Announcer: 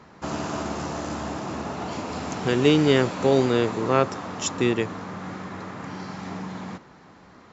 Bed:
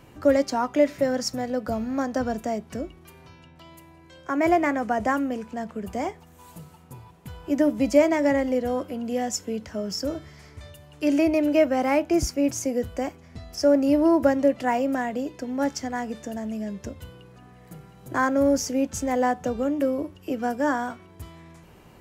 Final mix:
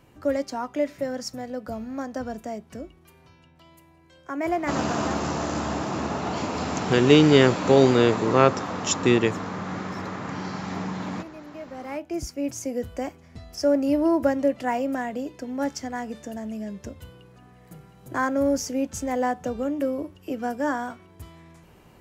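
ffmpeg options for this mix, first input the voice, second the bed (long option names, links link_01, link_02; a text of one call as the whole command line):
ffmpeg -i stem1.wav -i stem2.wav -filter_complex "[0:a]adelay=4450,volume=3dB[link_01];[1:a]volume=13.5dB,afade=type=out:start_time=4.84:duration=0.39:silence=0.16788,afade=type=in:start_time=11.59:duration=1.34:silence=0.112202[link_02];[link_01][link_02]amix=inputs=2:normalize=0" out.wav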